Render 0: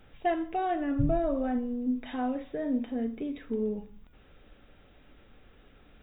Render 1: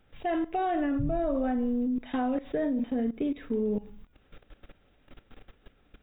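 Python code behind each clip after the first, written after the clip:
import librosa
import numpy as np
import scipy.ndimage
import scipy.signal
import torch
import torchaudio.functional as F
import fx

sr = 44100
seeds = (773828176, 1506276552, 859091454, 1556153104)

y = fx.level_steps(x, sr, step_db=18)
y = y * librosa.db_to_amplitude(8.5)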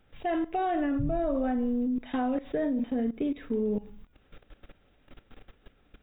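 y = x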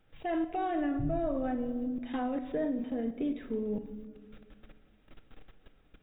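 y = fx.room_shoebox(x, sr, seeds[0], volume_m3=2200.0, walls='mixed', distance_m=0.61)
y = y * librosa.db_to_amplitude(-4.0)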